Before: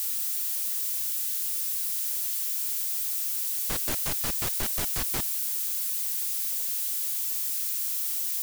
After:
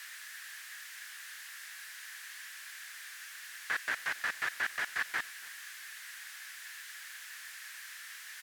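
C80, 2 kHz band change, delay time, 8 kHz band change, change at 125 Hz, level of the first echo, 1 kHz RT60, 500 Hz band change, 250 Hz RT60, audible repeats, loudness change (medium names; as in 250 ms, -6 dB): no reverb, +8.0 dB, 277 ms, -17.0 dB, under -25 dB, -22.0 dB, no reverb, -12.0 dB, no reverb, 1, -13.5 dB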